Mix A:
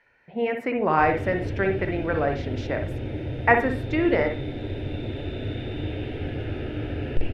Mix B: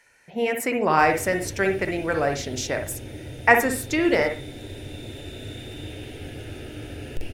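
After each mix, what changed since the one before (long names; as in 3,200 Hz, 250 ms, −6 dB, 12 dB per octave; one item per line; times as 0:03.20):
background −7.0 dB
master: remove high-frequency loss of the air 370 metres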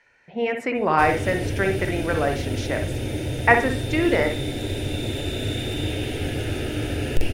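speech: add low-pass filter 3,600 Hz 12 dB per octave
background +10.0 dB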